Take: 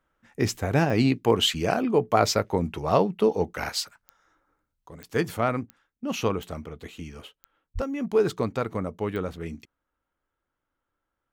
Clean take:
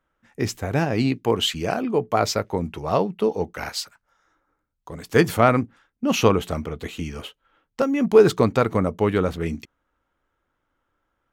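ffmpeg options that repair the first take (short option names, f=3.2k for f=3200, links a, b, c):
-filter_complex "[0:a]adeclick=t=4,asplit=3[a][b][c];[a]afade=t=out:st=7.74:d=0.02[d];[b]highpass=f=140:w=0.5412,highpass=f=140:w=1.3066,afade=t=in:st=7.74:d=0.02,afade=t=out:st=7.86:d=0.02[e];[c]afade=t=in:st=7.86:d=0.02[f];[d][e][f]amix=inputs=3:normalize=0,asetnsamples=n=441:p=0,asendcmd='4.86 volume volume 8.5dB',volume=0dB"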